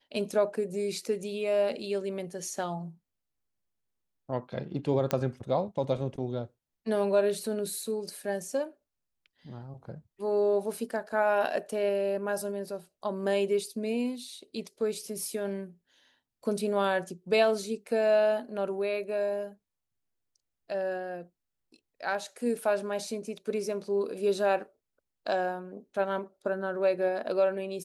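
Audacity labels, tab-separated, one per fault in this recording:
5.110000	5.110000	pop -13 dBFS

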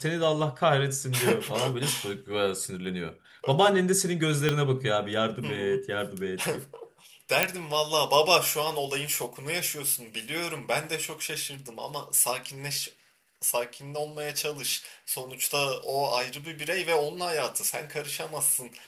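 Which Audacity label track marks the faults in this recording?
4.490000	4.490000	pop -10 dBFS
7.430000	7.430000	pop -4 dBFS

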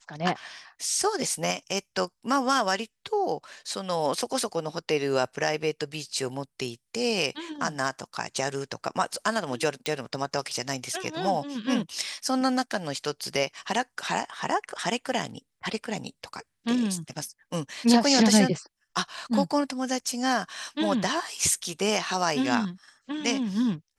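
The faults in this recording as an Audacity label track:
9.860000	9.860000	pop

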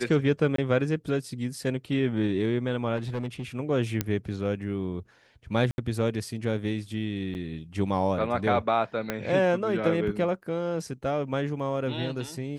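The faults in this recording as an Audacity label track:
0.560000	0.580000	dropout 23 ms
2.960000	3.430000	clipped -27 dBFS
4.010000	4.010000	pop -10 dBFS
5.710000	5.780000	dropout 71 ms
7.340000	7.350000	dropout 9.6 ms
9.100000	9.100000	pop -13 dBFS

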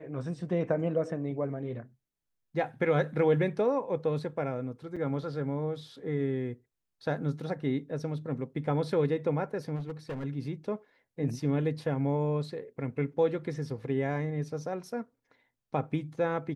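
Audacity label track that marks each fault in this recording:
4.960000	4.970000	dropout 5.8 ms
9.750000	10.250000	clipped -32.5 dBFS

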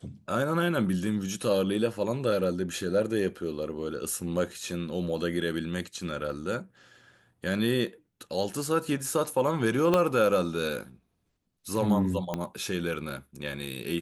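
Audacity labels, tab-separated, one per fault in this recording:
9.940000	9.940000	pop -11 dBFS
12.340000	12.340000	pop -16 dBFS

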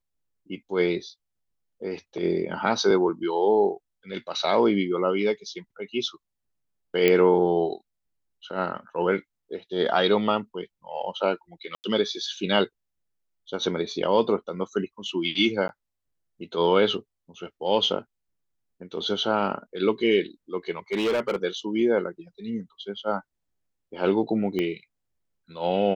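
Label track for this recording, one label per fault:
7.080000	7.080000	pop -8 dBFS
11.750000	11.840000	dropout 89 ms
15.680000	15.690000	dropout 11 ms
20.920000	21.360000	clipped -20.5 dBFS
24.590000	24.590000	pop -16 dBFS

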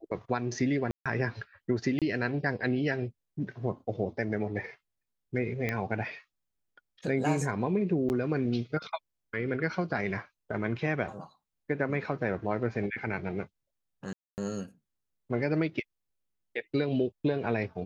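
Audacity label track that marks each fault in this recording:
0.910000	1.060000	dropout 146 ms
1.990000	2.020000	dropout 27 ms
5.690000	5.690000	pop -17 dBFS
8.090000	8.100000	dropout 9.2 ms
14.130000	14.380000	dropout 249 ms

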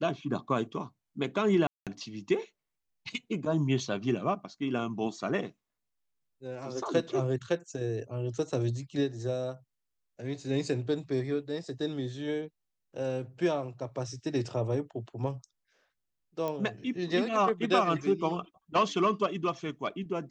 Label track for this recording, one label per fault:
1.670000	1.870000	dropout 197 ms
16.480000	16.480000	pop -21 dBFS

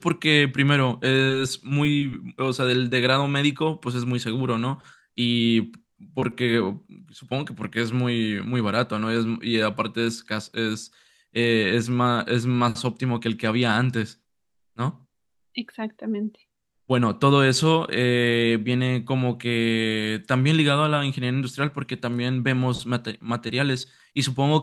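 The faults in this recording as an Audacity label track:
1.850000	1.850000	dropout 2.1 ms

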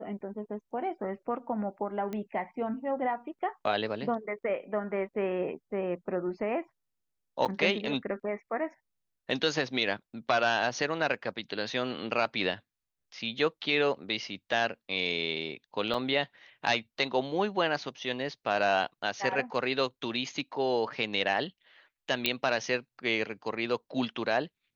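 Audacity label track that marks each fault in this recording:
2.130000	2.130000	pop -23 dBFS
7.450000	7.460000	dropout 7 ms
15.940000	15.940000	dropout 4.8 ms
22.260000	22.260000	pop -10 dBFS

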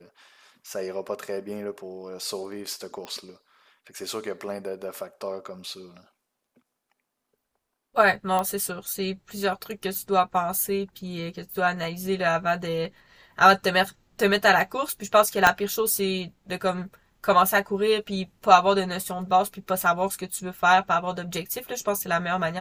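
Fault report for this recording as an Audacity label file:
3.050000	3.050000	pop -22 dBFS
8.390000	8.390000	pop -13 dBFS
15.470000	15.470000	pop -3 dBFS

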